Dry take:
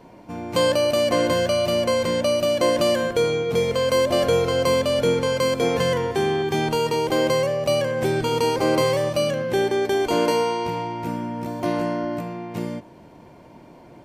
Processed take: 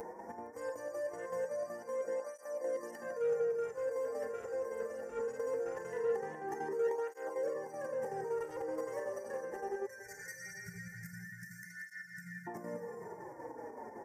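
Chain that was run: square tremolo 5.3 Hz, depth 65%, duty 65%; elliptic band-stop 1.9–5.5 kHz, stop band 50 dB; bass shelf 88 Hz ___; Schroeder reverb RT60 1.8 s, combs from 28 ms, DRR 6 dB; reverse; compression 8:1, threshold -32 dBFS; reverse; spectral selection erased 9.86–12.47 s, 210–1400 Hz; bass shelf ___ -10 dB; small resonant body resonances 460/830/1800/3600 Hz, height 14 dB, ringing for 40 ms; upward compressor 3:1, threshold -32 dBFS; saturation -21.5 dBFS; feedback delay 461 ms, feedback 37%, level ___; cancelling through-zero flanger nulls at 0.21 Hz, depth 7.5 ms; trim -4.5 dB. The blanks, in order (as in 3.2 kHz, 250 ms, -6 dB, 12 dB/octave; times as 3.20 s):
-11 dB, 260 Hz, -16 dB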